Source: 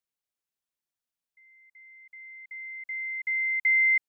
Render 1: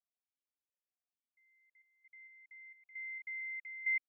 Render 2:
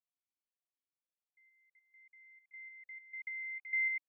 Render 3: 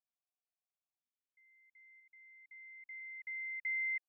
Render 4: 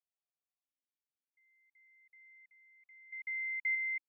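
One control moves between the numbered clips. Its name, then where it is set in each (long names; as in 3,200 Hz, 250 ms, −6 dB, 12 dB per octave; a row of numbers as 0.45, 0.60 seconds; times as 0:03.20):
formant filter that steps through the vowels, speed: 4.4, 6.7, 1, 1.6 Hertz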